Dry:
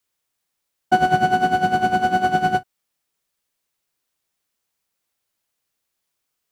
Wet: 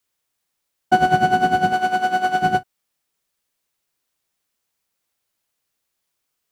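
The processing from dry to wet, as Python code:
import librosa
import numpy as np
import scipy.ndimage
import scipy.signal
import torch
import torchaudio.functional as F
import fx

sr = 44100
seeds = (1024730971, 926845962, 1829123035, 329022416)

y = fx.highpass(x, sr, hz=510.0, slope=6, at=(1.73, 2.42))
y = y * librosa.db_to_amplitude(1.0)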